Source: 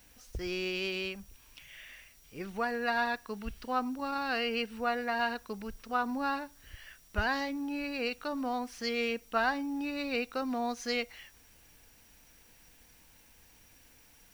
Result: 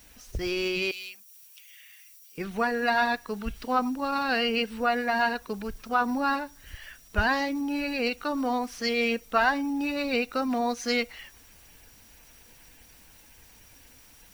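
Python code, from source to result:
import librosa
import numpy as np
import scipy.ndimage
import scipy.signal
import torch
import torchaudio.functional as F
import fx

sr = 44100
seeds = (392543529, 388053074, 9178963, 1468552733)

y = fx.spec_quant(x, sr, step_db=15)
y = fx.differentiator(y, sr, at=(0.91, 2.38))
y = y * 10.0 ** (6.5 / 20.0)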